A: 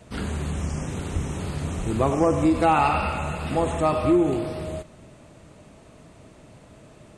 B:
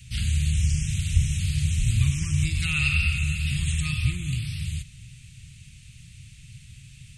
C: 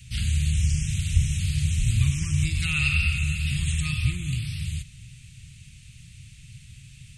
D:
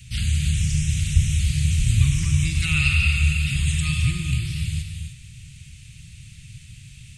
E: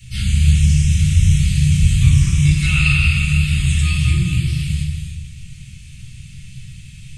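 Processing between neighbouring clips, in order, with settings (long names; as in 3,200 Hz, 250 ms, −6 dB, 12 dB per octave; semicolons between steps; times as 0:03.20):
Chebyshev band-stop filter 130–2,500 Hz, order 3; level +8 dB
no processing that can be heard
reverb whose tail is shaped and stops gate 330 ms rising, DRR 5.5 dB; level +2.5 dB
rectangular room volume 430 cubic metres, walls furnished, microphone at 4.2 metres; level −2.5 dB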